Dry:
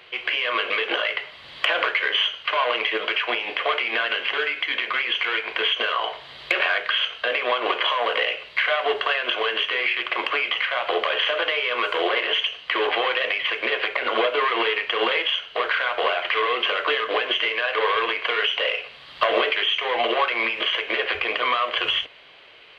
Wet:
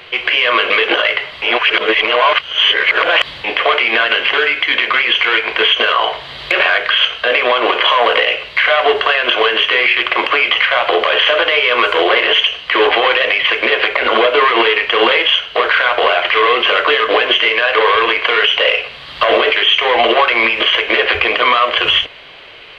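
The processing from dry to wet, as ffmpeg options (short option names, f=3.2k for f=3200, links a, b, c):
-filter_complex "[0:a]asplit=3[a][b][c];[a]atrim=end=1.422[d];[b]atrim=start=1.418:end=3.442,asetpts=PTS-STARTPTS,areverse[e];[c]atrim=start=3.438[f];[d][e]acrossfade=d=0.004:c1=hsin:c2=hsin[g];[g][f]acrossfade=d=0.004:c1=hsin:c2=hsin,lowshelf=f=120:g=8,alimiter=level_in=12.5dB:limit=-1dB:release=50:level=0:latency=1,volume=-1dB"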